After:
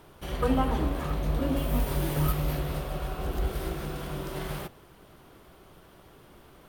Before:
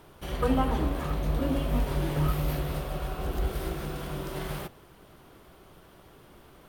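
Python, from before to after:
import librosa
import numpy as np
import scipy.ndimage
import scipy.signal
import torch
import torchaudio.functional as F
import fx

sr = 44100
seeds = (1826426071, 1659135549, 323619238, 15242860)

y = fx.high_shelf(x, sr, hz=fx.line((1.56, 10000.0), (2.31, 6600.0)), db=11.5, at=(1.56, 2.31), fade=0.02)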